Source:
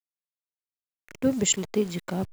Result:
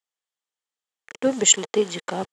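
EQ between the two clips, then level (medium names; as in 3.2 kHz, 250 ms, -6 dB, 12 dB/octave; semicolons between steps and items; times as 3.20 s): cabinet simulation 250–8500 Hz, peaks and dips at 470 Hz +7 dB, 830 Hz +8 dB, 1.2 kHz +6 dB, 1.8 kHz +7 dB, 3.2 kHz +8 dB, 7.3 kHz +4 dB; treble shelf 5.7 kHz +6 dB; +1.5 dB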